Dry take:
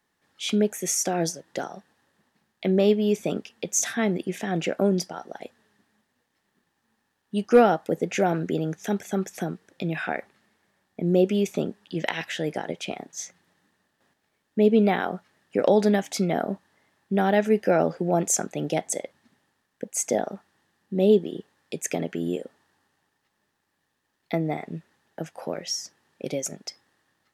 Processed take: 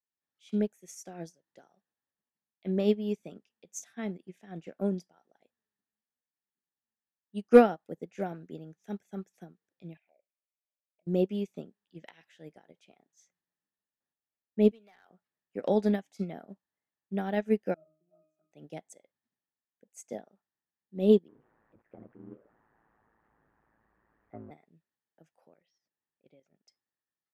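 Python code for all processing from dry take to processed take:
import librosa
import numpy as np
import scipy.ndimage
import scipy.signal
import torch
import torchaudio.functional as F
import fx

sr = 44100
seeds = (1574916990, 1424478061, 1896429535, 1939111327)

y = fx.chain(x, sr, fx.env_lowpass_down(base_hz=1200.0, full_db=-24.0),
    fx.double_bandpass(hz=1200.0, octaves=2.0),
    fx.env_flanger(rest_ms=3.6, full_db=-35.5), at=(9.97, 11.07))
y = fx.chain(y, sr, fx.highpass(hz=1500.0, slope=6),
    fx.clip_hard(threshold_db=-24.5),
    fx.band_squash(depth_pct=70), at=(14.71, 15.11))
y = fx.chain(y, sr, fx.peak_eq(hz=110.0, db=-14.0, octaves=0.93),
    fx.octave_resonator(note='D#', decay_s=0.48),
    fx.small_body(hz=(570.0, 1300.0), ring_ms=40, db=12), at=(17.74, 18.52))
y = fx.chain(y, sr, fx.zero_step(step_db=-29.0),
    fx.lowpass(hz=1600.0, slope=24),
    fx.ring_mod(carrier_hz=55.0), at=(21.28, 24.51))
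y = fx.chain(y, sr, fx.lowpass(hz=3500.0, slope=24),
    fx.level_steps(step_db=10), at=(25.48, 26.68))
y = fx.dynamic_eq(y, sr, hz=190.0, q=1.1, threshold_db=-32.0, ratio=4.0, max_db=4)
y = fx.upward_expand(y, sr, threshold_db=-30.0, expansion=2.5)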